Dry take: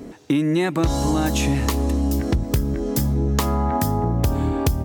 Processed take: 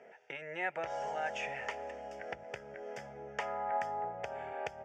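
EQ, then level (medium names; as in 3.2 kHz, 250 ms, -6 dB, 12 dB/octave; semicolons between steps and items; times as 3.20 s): band-pass 670–7200 Hz; distance through air 200 m; static phaser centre 1.1 kHz, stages 6; -4.0 dB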